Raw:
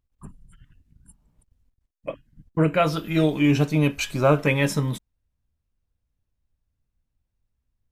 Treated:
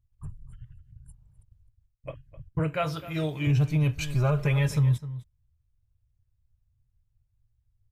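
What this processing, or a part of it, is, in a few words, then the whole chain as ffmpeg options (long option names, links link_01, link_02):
car stereo with a boomy subwoofer: -filter_complex "[0:a]asettb=1/sr,asplit=3[link_01][link_02][link_03];[link_01]atrim=end=2.594[link_04];[link_02]atrim=start=2.59:end=3.47,asetpts=PTS-STARTPTS,afade=type=in:duration=0.004:curve=qsin,afade=type=out:start_time=0.876:duration=0.004:curve=qsin,highpass=frequency=240:poles=1[link_05];[link_03]atrim=start=3.466[link_06];[link_04][link_05]acrossfade=duration=0.004:curve1=hsin:curve2=qsin[link_07];[link_07][link_06]acrossfade=duration=0.004:curve1=qsin:curve2=hsin,asettb=1/sr,asplit=3[link_08][link_09][link_10];[link_08]atrim=end=4.074[link_11];[link_09]atrim=start=4.07:end=4.68,asetpts=PTS-STARTPTS,afade=type=in:duration=0.004:curve=qsin,afade=type=out:start_time=0.606:duration=0.004:curve=qsin,aecho=1:1:4.9:0.65,atrim=end_sample=26901[link_12];[link_10]atrim=start=4.676[link_13];[link_11][link_12]acrossfade=duration=0.004:curve1=hsin:curve2=qsin[link_14];[link_14][link_13]acrossfade=duration=0.004:curve1=qsin:curve2=hsin,lowshelf=frequency=160:width_type=q:width=3:gain=11,asplit=2[link_15][link_16];[link_16]adelay=256.6,volume=-16dB,highshelf=frequency=4000:gain=-5.77[link_17];[link_15][link_17]amix=inputs=2:normalize=0,alimiter=limit=-9.5dB:level=0:latency=1:release=84,volume=-7dB"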